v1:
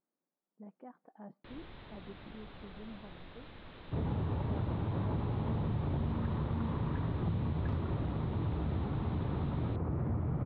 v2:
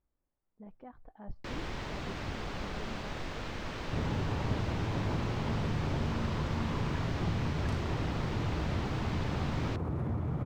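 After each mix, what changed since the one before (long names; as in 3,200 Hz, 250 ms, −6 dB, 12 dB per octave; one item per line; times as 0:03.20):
speech: remove linear-phase brick-wall high-pass 160 Hz
first sound: remove transistor ladder low-pass 4,100 Hz, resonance 70%
master: remove high-frequency loss of the air 420 metres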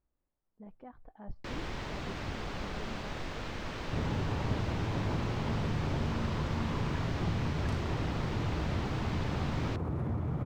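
nothing changed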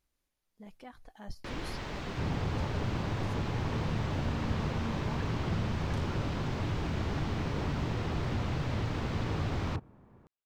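speech: remove low-pass filter 1,100 Hz 12 dB per octave
second sound: entry −1.75 s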